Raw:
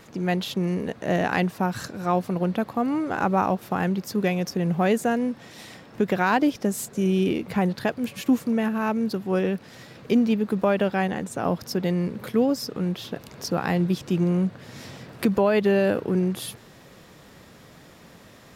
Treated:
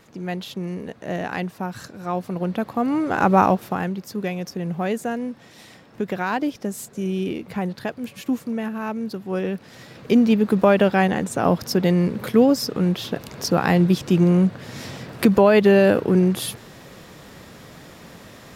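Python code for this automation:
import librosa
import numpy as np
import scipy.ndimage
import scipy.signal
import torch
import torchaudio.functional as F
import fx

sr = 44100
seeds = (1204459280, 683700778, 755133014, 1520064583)

y = fx.gain(x, sr, db=fx.line((1.98, -4.0), (3.44, 7.0), (3.94, -3.0), (9.18, -3.0), (10.45, 6.0)))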